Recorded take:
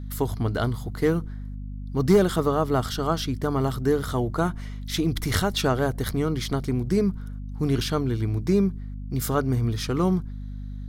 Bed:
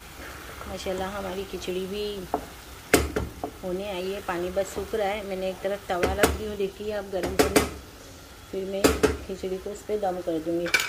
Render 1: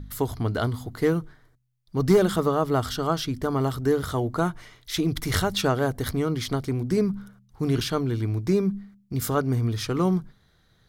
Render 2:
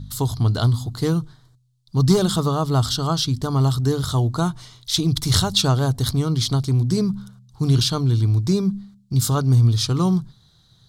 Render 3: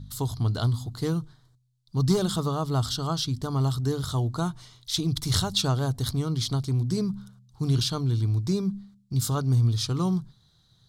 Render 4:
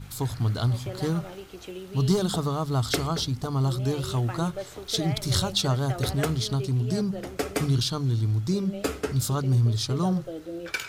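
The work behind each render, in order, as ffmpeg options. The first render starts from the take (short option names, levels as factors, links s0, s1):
-af "bandreject=f=50:t=h:w=4,bandreject=f=100:t=h:w=4,bandreject=f=150:t=h:w=4,bandreject=f=200:t=h:w=4,bandreject=f=250:t=h:w=4"
-af "equalizer=f=125:t=o:w=1:g=11,equalizer=f=500:t=o:w=1:g=-4,equalizer=f=1000:t=o:w=1:g=5,equalizer=f=2000:t=o:w=1:g=-10,equalizer=f=4000:t=o:w=1:g=12,equalizer=f=8000:t=o:w=1:g=8"
-af "volume=0.473"
-filter_complex "[1:a]volume=0.376[s0];[0:a][s0]amix=inputs=2:normalize=0"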